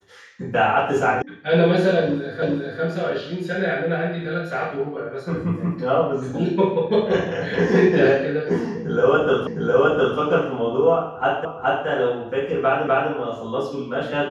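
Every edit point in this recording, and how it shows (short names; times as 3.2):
1.22 sound cut off
2.42 repeat of the last 0.4 s
9.47 repeat of the last 0.71 s
11.45 repeat of the last 0.42 s
12.87 repeat of the last 0.25 s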